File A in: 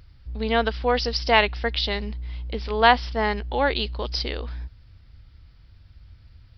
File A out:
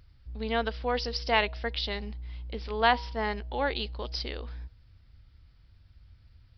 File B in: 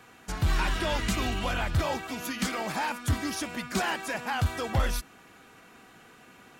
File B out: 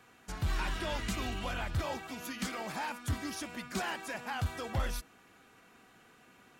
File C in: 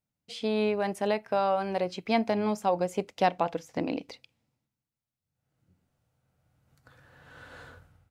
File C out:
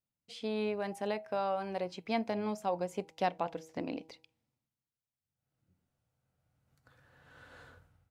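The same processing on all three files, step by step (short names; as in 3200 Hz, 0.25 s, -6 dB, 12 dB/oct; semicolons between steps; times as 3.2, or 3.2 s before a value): de-hum 159.9 Hz, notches 6; gain -7 dB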